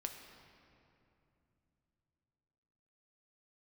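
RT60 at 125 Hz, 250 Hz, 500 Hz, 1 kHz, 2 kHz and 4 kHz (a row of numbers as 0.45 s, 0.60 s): 4.4 s, 3.9 s, 3.0 s, 2.6 s, 2.3 s, 1.7 s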